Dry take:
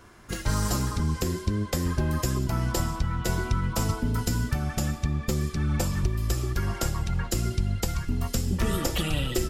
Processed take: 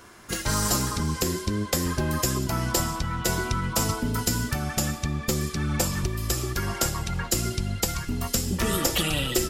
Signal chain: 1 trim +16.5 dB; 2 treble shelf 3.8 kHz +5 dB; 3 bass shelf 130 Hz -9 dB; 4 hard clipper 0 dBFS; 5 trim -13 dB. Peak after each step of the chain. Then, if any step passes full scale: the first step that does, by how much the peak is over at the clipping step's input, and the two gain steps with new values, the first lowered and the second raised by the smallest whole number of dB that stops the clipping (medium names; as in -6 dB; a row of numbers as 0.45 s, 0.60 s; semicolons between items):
+3.5 dBFS, +5.5 dBFS, +5.5 dBFS, 0.0 dBFS, -13.0 dBFS; step 1, 5.5 dB; step 1 +10.5 dB, step 5 -7 dB